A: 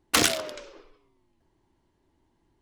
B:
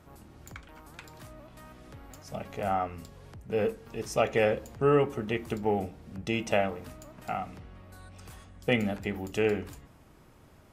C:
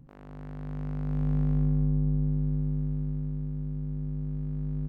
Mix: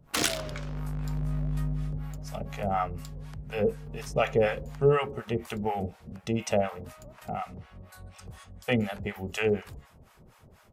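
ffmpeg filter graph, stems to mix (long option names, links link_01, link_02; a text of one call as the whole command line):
ffmpeg -i stem1.wav -i stem2.wav -i stem3.wav -filter_complex "[0:a]volume=-12.5dB[link_01];[1:a]equalizer=frequency=300:width=5.8:gain=-14.5,acrossover=split=670[link_02][link_03];[link_02]aeval=exprs='val(0)*(1-1/2+1/2*cos(2*PI*4.1*n/s))':channel_layout=same[link_04];[link_03]aeval=exprs='val(0)*(1-1/2-1/2*cos(2*PI*4.1*n/s))':channel_layout=same[link_05];[link_04][link_05]amix=inputs=2:normalize=0,volume=-3dB[link_06];[2:a]equalizer=frequency=340:width_type=o:width=2.2:gain=-8,acompressor=threshold=-34dB:ratio=2,volume=-5dB,afade=type=out:start_time=1.67:duration=0.48:silence=0.334965[link_07];[link_01][link_06][link_07]amix=inputs=3:normalize=0,dynaudnorm=framelen=120:gausssize=3:maxgain=9dB" out.wav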